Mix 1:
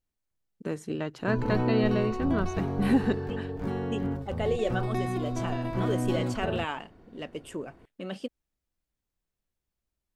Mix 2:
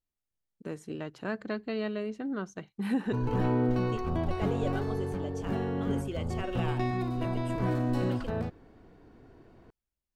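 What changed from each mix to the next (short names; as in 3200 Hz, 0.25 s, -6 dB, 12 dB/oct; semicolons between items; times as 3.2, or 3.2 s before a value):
first voice -5.5 dB; second voice -7.0 dB; background: entry +1.85 s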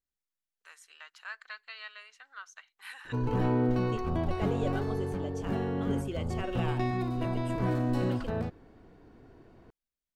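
first voice: add HPF 1200 Hz 24 dB/oct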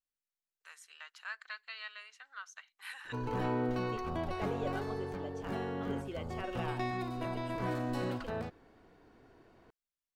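second voice: add LPF 2100 Hz 6 dB/oct; master: add low shelf 400 Hz -10 dB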